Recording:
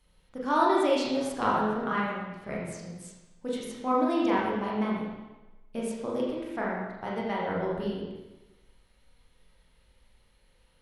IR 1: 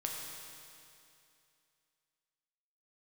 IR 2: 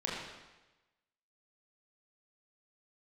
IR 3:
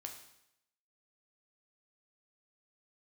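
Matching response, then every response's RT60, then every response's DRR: 2; 2.6, 1.1, 0.80 s; -1.5, -5.5, 2.5 dB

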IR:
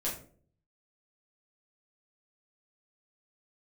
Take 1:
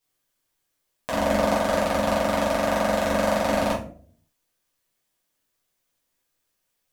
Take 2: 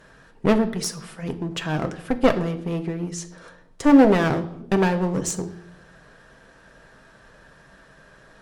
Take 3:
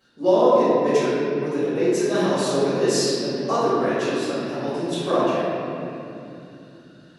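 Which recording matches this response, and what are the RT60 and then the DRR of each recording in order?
1; 0.50, 0.75, 2.8 s; -7.0, 6.0, -15.5 dB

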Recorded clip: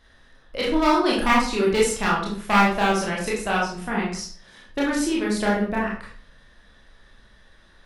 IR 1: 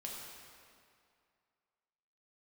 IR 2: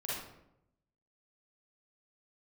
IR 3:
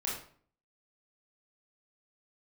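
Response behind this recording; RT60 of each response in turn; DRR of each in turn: 3; 2.3, 0.80, 0.50 s; -3.0, -8.0, -5.5 dB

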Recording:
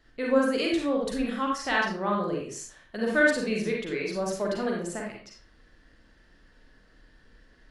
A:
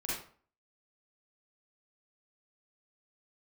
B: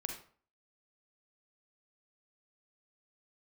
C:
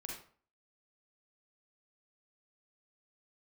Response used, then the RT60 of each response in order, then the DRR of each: C; 0.45, 0.45, 0.45 s; -8.0, 3.0, -2.0 dB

